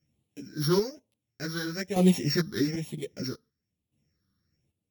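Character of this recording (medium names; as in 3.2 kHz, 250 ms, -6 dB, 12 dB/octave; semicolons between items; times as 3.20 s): a buzz of ramps at a fixed pitch in blocks of 8 samples; phasing stages 6, 1.1 Hz, lowest notch 670–1500 Hz; chopped level 0.51 Hz, depth 65%, duty 40%; a shimmering, thickened sound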